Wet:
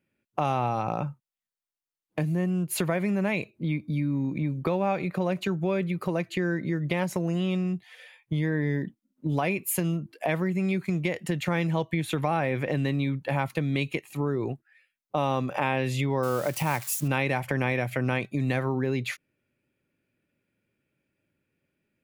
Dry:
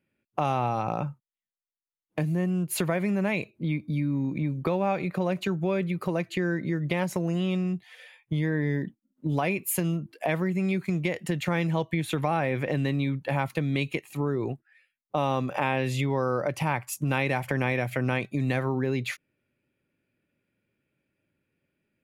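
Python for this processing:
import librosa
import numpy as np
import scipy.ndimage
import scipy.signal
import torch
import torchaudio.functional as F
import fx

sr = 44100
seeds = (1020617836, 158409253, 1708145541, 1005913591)

y = fx.crossing_spikes(x, sr, level_db=-28.5, at=(16.23, 17.08))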